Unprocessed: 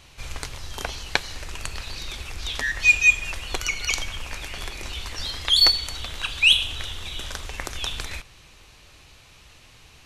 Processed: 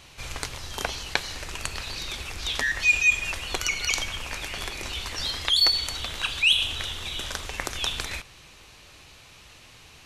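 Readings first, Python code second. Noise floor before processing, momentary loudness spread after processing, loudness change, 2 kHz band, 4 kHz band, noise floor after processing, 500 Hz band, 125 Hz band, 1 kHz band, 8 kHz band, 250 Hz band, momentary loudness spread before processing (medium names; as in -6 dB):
-51 dBFS, 14 LU, -3.0 dB, -2.5 dB, -2.5 dB, -51 dBFS, +0.5 dB, -2.0 dB, +0.5 dB, 0.0 dB, +0.5 dB, 19 LU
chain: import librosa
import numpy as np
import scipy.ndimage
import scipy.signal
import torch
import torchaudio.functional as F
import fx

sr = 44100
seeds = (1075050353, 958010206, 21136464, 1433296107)

p1 = fx.over_compress(x, sr, threshold_db=-26.0, ratio=-1.0)
p2 = x + F.gain(torch.from_numpy(p1), -2.5).numpy()
p3 = fx.low_shelf(p2, sr, hz=70.0, db=-8.0)
y = F.gain(torch.from_numpy(p3), -4.5).numpy()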